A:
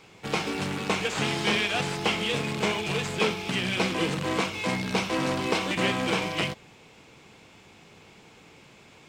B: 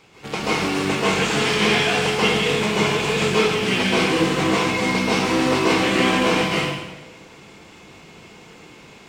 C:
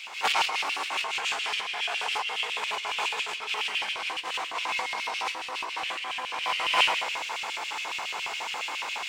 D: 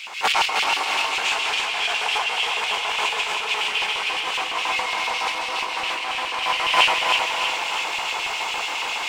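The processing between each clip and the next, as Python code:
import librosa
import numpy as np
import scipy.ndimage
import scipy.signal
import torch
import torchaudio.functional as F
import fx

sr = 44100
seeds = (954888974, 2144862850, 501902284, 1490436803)

y1 = fx.rev_plate(x, sr, seeds[0], rt60_s=1.1, hf_ratio=0.85, predelay_ms=120, drr_db=-7.5)
y2 = fx.over_compress(y1, sr, threshold_db=-31.0, ratio=-1.0)
y2 = fx.filter_lfo_highpass(y2, sr, shape='square', hz=7.2, low_hz=870.0, high_hz=2700.0, q=2.8)
y3 = fx.low_shelf(y2, sr, hz=88.0, db=9.0)
y3 = fx.echo_feedback(y3, sr, ms=317, feedback_pct=57, wet_db=-4.5)
y3 = y3 * librosa.db_to_amplitude(5.0)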